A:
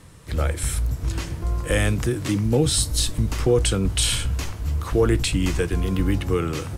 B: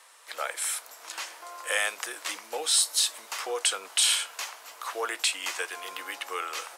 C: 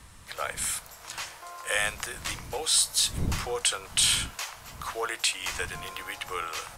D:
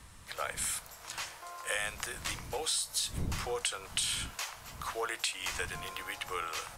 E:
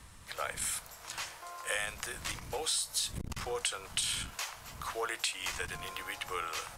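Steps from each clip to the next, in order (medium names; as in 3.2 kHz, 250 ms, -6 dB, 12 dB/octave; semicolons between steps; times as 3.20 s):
high-pass 690 Hz 24 dB/octave
wind noise 120 Hz -41 dBFS
compression 10:1, threshold -26 dBFS, peak gain reduction 8.5 dB; trim -3 dB
transformer saturation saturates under 520 Hz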